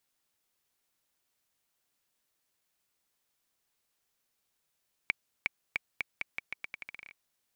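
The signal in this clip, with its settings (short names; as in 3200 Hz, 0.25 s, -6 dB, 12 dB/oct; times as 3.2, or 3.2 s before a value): bouncing ball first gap 0.36 s, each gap 0.83, 2290 Hz, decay 17 ms -12.5 dBFS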